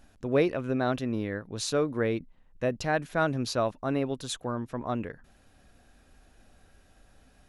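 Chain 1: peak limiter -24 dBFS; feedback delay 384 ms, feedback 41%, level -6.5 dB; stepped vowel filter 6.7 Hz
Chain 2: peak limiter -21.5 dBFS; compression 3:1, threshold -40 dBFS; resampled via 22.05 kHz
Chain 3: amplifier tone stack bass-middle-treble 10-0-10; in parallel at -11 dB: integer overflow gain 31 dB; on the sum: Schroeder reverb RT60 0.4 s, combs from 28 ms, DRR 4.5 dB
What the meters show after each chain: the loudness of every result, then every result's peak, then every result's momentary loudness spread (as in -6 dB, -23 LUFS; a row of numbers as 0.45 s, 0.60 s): -44.5 LUFS, -42.0 LUFS, -38.0 LUFS; -28.0 dBFS, -26.5 dBFS, -19.5 dBFS; 15 LU, 21 LU, 11 LU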